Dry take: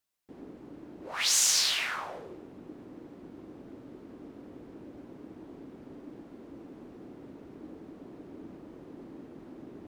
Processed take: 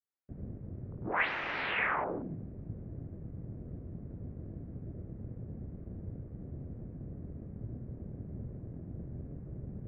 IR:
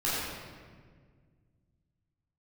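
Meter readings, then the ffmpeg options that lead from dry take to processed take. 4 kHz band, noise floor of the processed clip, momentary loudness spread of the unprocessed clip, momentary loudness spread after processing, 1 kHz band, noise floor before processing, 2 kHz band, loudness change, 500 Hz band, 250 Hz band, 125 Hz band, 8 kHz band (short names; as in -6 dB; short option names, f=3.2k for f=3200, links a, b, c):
-17.0 dB, -49 dBFS, 20 LU, 13 LU, +4.5 dB, -51 dBFS, +2.5 dB, -14.0 dB, +1.5 dB, 0.0 dB, +14.5 dB, under -40 dB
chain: -af "afwtdn=0.00501,adynamicequalizer=threshold=0.00355:dfrequency=1500:dqfactor=1.2:tfrequency=1500:tqfactor=1.2:attack=5:release=100:ratio=0.375:range=2:mode=cutabove:tftype=bell,highpass=f=250:t=q:w=0.5412,highpass=f=250:t=q:w=1.307,lowpass=f=2.4k:t=q:w=0.5176,lowpass=f=2.4k:t=q:w=0.7071,lowpass=f=2.4k:t=q:w=1.932,afreqshift=-200,volume=6dB"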